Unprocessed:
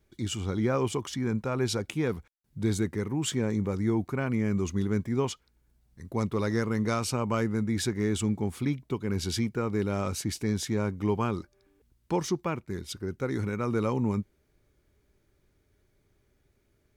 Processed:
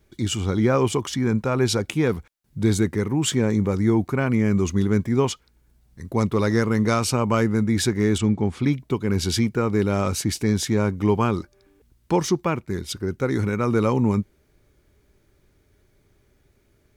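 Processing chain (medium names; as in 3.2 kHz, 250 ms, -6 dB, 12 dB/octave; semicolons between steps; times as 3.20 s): 8.18–8.64 s: distance through air 87 m; trim +7.5 dB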